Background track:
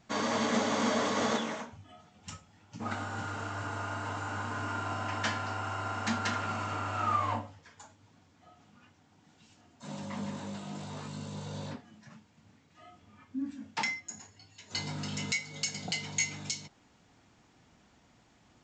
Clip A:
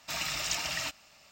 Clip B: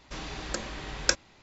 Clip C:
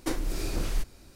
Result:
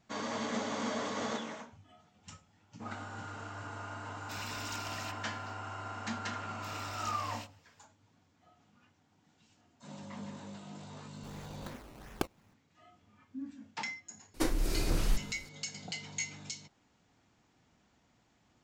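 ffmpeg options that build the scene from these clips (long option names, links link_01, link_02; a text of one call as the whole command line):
ffmpeg -i bed.wav -i cue0.wav -i cue1.wav -i cue2.wav -filter_complex "[1:a]asplit=2[link_01][link_02];[0:a]volume=-6.5dB[link_03];[link_01]asoftclip=type=tanh:threshold=-25dB[link_04];[link_02]flanger=delay=19.5:depth=6.2:speed=1.9[link_05];[2:a]acrusher=samples=19:mix=1:aa=0.000001:lfo=1:lforange=19:lforate=2.8[link_06];[link_04]atrim=end=1.31,asetpts=PTS-STARTPTS,volume=-9.5dB,afade=type=in:duration=0.004:curve=hsin,afade=type=out:start_time=1.306:duration=0.004:curve=hsin,adelay=185661S[link_07];[link_05]atrim=end=1.31,asetpts=PTS-STARTPTS,volume=-10.5dB,afade=type=in:duration=0.004:curve=hsin,afade=type=out:start_time=1.306:duration=0.004:curve=hsin,adelay=6540[link_08];[link_06]atrim=end=1.42,asetpts=PTS-STARTPTS,volume=-13dB,afade=type=in:duration=0.004:curve=hsin,afade=type=out:start_time=1.416:duration=0.004:curve=hsin,adelay=11120[link_09];[3:a]atrim=end=1.15,asetpts=PTS-STARTPTS,volume=-0.5dB,afade=type=in:duration=0.004:curve=hsin,afade=type=out:start_time=1.146:duration=0.004:curve=hsin,adelay=14340[link_10];[link_03][link_07][link_08][link_09][link_10]amix=inputs=5:normalize=0" out.wav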